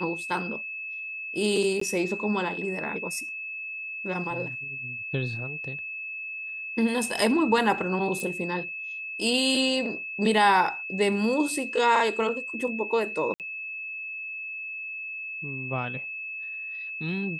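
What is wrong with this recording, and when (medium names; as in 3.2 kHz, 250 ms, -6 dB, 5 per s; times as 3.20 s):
whine 2.6 kHz -33 dBFS
1.80–1.81 s: dropout 14 ms
8.20 s: pop
13.34–13.40 s: dropout 58 ms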